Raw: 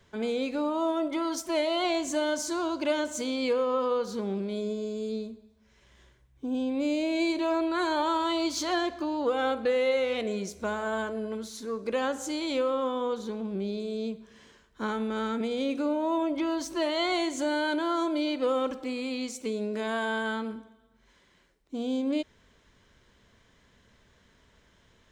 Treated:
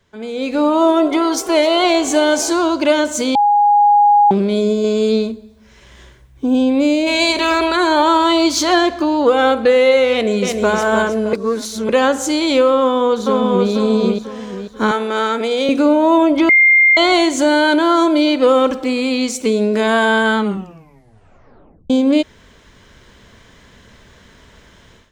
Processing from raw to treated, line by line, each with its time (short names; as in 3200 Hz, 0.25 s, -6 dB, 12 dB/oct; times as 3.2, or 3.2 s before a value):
0.47–2.53 frequency-shifting echo 0.257 s, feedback 64%, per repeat +68 Hz, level -19 dB
3.35–4.31 bleep 824 Hz -23 dBFS
4.84–5.32 bell 1700 Hz +7.5 dB 2.8 oct
7.06–7.75 spectral limiter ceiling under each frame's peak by 17 dB
10.11–10.71 echo throw 0.31 s, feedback 35%, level -5 dB
11.33–11.89 reverse
12.77–13.69 echo throw 0.49 s, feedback 35%, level -2.5 dB
14.91–15.69 HPF 420 Hz
16.49–16.97 bleep 2110 Hz -22 dBFS
20.37 tape stop 1.53 s
whole clip: AGC gain up to 16.5 dB